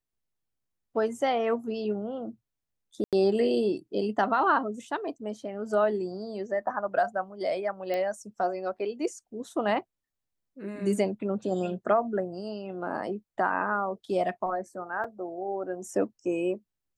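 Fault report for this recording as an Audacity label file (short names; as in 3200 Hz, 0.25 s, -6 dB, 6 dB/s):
3.040000	3.130000	gap 87 ms
7.940000	7.940000	pop -19 dBFS
15.040000	15.040000	gap 4.2 ms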